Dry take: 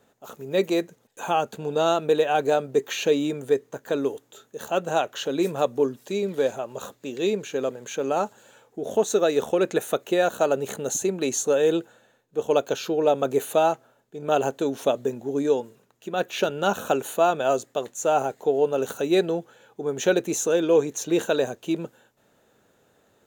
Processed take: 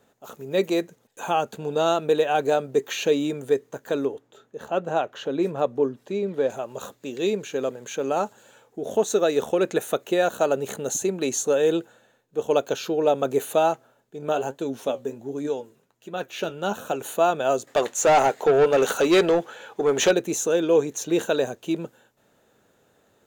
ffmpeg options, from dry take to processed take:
-filter_complex "[0:a]asettb=1/sr,asplit=3[a][b][c];[a]atrim=end=4.054[d];[b]atrim=start=4.05:end=6.5,asetpts=PTS-STARTPTS,afade=t=in:d=0.004:c=qsin,afade=t=out:st=2.446:d=0.004:c=qsin,lowpass=f=1.8k:p=1[e];[c]atrim=start=6.496[f];[d][e]acrossfade=d=0.004:c1=hsin:c2=qsin[g];[g][f]acrossfade=d=0.004:c1=qsin:c2=hsin,asplit=3[h][i][j];[h]afade=t=out:st=14.31:d=0.02[k];[i]flanger=delay=5.5:depth=7.9:regen=58:speed=1.3:shape=triangular,afade=t=in:st=14.31:d=0.02,afade=t=out:st=17:d=0.02[l];[j]afade=t=in:st=17:d=0.02[m];[k][l][m]amix=inputs=3:normalize=0,asettb=1/sr,asplit=3[n][o][p];[n]atrim=end=17.674[q];[o]atrim=start=17.67:end=20.11,asetpts=PTS-STARTPTS,afade=t=in:d=0.004:c=qsin,afade=t=out:st=2.436:d=0.004:c=qsin,asplit=2[r][s];[s]highpass=f=720:p=1,volume=20dB,asoftclip=type=tanh:threshold=-9.5dB[t];[r][t]amix=inputs=2:normalize=0,lowpass=f=4.3k:p=1,volume=-6dB[u];[p]atrim=start=20.106[v];[q][u]acrossfade=d=0.004:c1=hsin:c2=qsin[w];[w][v]acrossfade=d=0.004:c1=qsin:c2=hsin"

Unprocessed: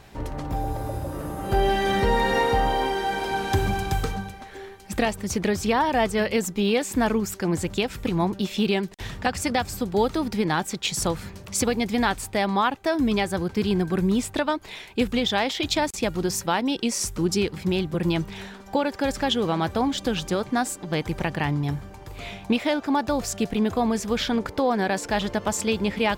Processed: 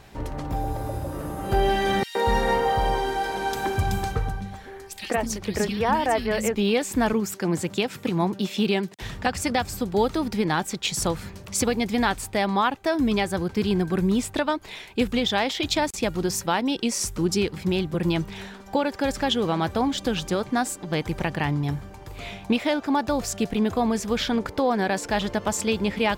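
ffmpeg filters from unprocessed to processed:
-filter_complex "[0:a]asettb=1/sr,asplit=3[a][b][c];[a]atrim=end=2.034[d];[b]atrim=start=2.03:end=6.55,asetpts=PTS-STARTPTS,afade=t=in:d=0.004:c=qsin,afade=t=out:st=4.516:d=0.004:c=qsin,acrossover=split=260|2600[e][f][g];[f]adelay=120[h];[e]adelay=240[i];[i][h][g]amix=inputs=3:normalize=0,atrim=end_sample=199332[j];[c]atrim=start=6.546[k];[d][j]acrossfade=d=0.004:c1=hsin:c2=qsin[l];[l][k]acrossfade=d=0.004:c1=qsin:c2=hsin,asettb=1/sr,asplit=3[m][n][o];[m]atrim=end=7.134[p];[n]atrim=start=7.13:end=9.02,asetpts=PTS-STARTPTS,afade=t=in:d=0.004:c=qsin,afade=t=out:st=1.886:d=0.004:c=qsin,highpass=f=120:w=0.5412,highpass=f=120:w=1.3066[q];[o]atrim=start=9.016[r];[p][q]acrossfade=d=0.004:c1=hsin:c2=qsin[s];[s][r]acrossfade=d=0.004:c1=qsin:c2=hsin"

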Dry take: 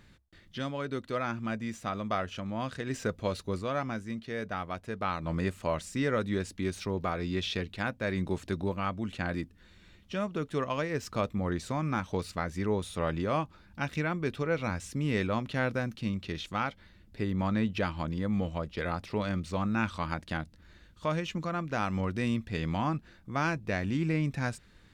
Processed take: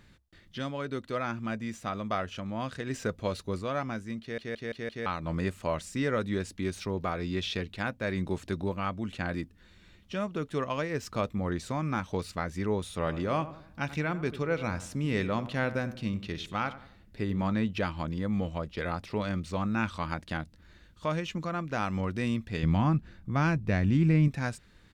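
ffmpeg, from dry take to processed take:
-filter_complex "[0:a]asplit=3[a][b][c];[a]afade=t=out:st=13.04:d=0.02[d];[b]asplit=2[e][f];[f]adelay=90,lowpass=f=1.6k:p=1,volume=-13dB,asplit=2[g][h];[h]adelay=90,lowpass=f=1.6k:p=1,volume=0.43,asplit=2[i][j];[j]adelay=90,lowpass=f=1.6k:p=1,volume=0.43,asplit=2[k][l];[l]adelay=90,lowpass=f=1.6k:p=1,volume=0.43[m];[e][g][i][k][m]amix=inputs=5:normalize=0,afade=t=in:st=13.04:d=0.02,afade=t=out:st=17.51:d=0.02[n];[c]afade=t=in:st=17.51:d=0.02[o];[d][n][o]amix=inputs=3:normalize=0,asettb=1/sr,asplit=3[p][q][r];[p]atrim=end=22.634[s];[q]atrim=start=22.63:end=24.28,asetpts=PTS-STARTPTS,afade=t=in:d=0.004:c=qsin,afade=t=out:st=1.646:d=0.004:c=qsin,bass=f=250:g=9,treble=f=4k:g=-3[t];[r]atrim=start=24.276[u];[s][t]acrossfade=d=0.004:c1=hsin:c2=qsin[v];[v][u]acrossfade=d=0.004:c1=qsin:c2=hsin,asplit=6[w][x][y][z][aa][ab];[w]atrim=end=4.382[ac];[x]atrim=start=4.208:end=4.382[ad];[y]atrim=start=4.208:end=4.382[ae];[z]atrim=start=4.208:end=4.382[af];[aa]atrim=start=4.208:end=4.382[ag];[ab]atrim=start=5.058[ah];[ac][ad]acrossfade=d=0.004:c1=hsin:c2=hsin[ai];[ai][ae]acrossfade=d=0.004:c1=hsin:c2=hsin[aj];[aj][af]acrossfade=d=0.004:c1=hsin:c2=hsin[ak];[ak][ag]acrossfade=d=0.004:c1=hsin:c2=hsin[al];[al][ah]acrossfade=d=0.004:c1=hsin:c2=hsin"

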